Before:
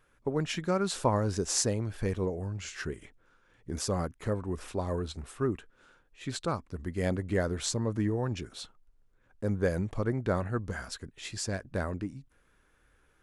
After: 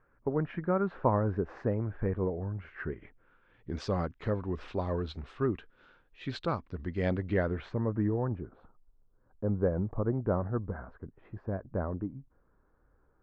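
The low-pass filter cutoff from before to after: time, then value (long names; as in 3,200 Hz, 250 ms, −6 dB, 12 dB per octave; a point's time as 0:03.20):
low-pass filter 24 dB per octave
0:02.66 1,700 Hz
0:03.79 4,100 Hz
0:07.27 4,100 Hz
0:07.73 2,000 Hz
0:08.43 1,200 Hz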